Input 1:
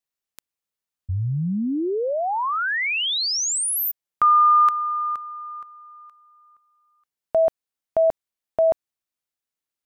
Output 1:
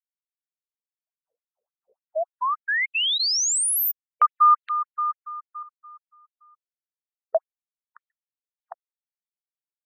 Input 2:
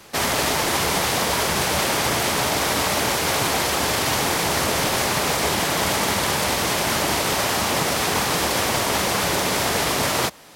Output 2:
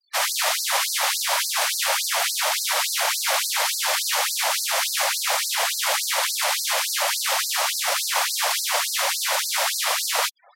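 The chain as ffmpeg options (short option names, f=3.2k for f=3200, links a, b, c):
-af "afftfilt=real='re*gte(hypot(re,im),0.00891)':imag='im*gte(hypot(re,im),0.00891)':win_size=1024:overlap=0.75,afftfilt=real='re*gte(b*sr/1024,470*pow(4100/470,0.5+0.5*sin(2*PI*3.5*pts/sr)))':imag='im*gte(b*sr/1024,470*pow(4100/470,0.5+0.5*sin(2*PI*3.5*pts/sr)))':win_size=1024:overlap=0.75,volume=1dB"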